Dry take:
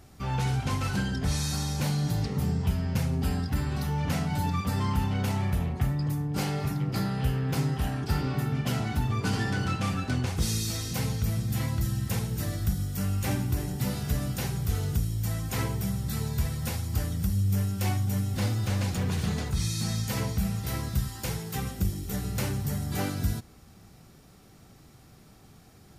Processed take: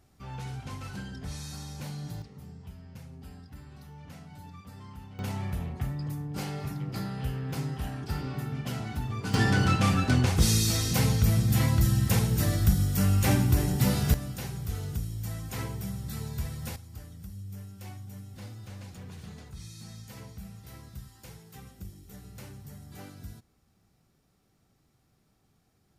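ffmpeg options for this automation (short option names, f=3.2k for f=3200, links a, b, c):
-af "asetnsamples=n=441:p=0,asendcmd='2.22 volume volume -18.5dB;5.19 volume volume -5.5dB;9.34 volume volume 5dB;14.14 volume volume -5.5dB;16.76 volume volume -15.5dB',volume=-10.5dB"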